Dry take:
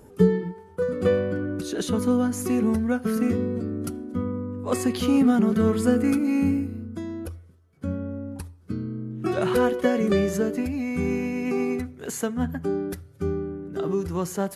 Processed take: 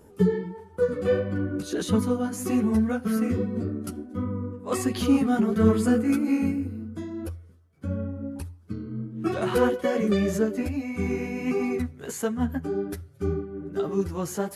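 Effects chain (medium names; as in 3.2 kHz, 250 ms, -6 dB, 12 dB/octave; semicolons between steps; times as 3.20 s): chorus voices 2, 1.5 Hz, delay 12 ms, depth 3 ms; random flutter of the level, depth 50%; trim +4 dB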